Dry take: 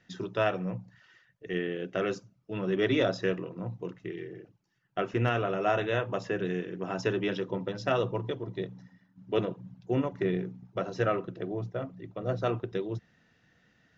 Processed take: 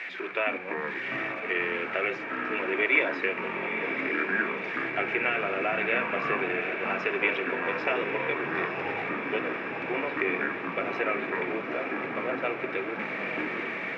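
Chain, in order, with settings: zero-crossing step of -38 dBFS; HPF 340 Hz 24 dB/oct; compressor 3:1, threshold -29 dBFS, peak gain reduction 6.5 dB; synth low-pass 2300 Hz, resonance Q 14; echoes that change speed 0.188 s, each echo -6 st, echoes 3, each echo -6 dB; diffused feedback echo 0.903 s, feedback 73%, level -8 dB

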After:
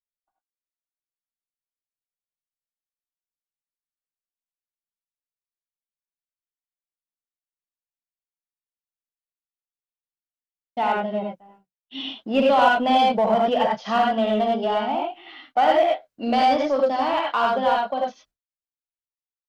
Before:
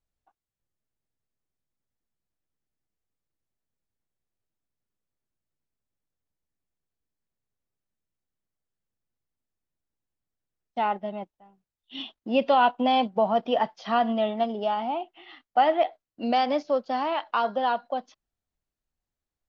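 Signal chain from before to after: non-linear reverb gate 0.12 s rising, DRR -1.5 dB; in parallel at -6.5 dB: hard clip -22 dBFS, distortion -7 dB; on the sum: expander -48 dBFS; gain -1 dB

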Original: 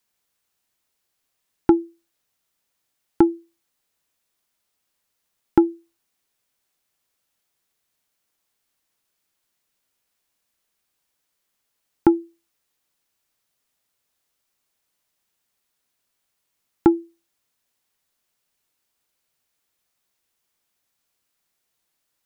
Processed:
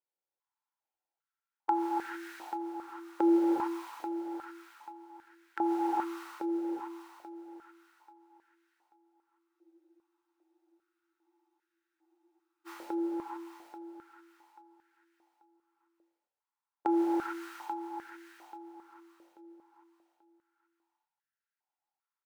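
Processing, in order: per-bin compression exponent 0.6; gate -48 dBFS, range -52 dB; negative-ratio compressor -18 dBFS, ratio -1; limiter -19.5 dBFS, peak gain reduction 8 dB; feedback echo 0.836 s, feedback 30%, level -8.5 dB; non-linear reverb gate 0.48 s rising, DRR -3.5 dB; spectral freeze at 9.49, 3.18 s; stepped high-pass 2.5 Hz 560–1600 Hz; gain +3.5 dB

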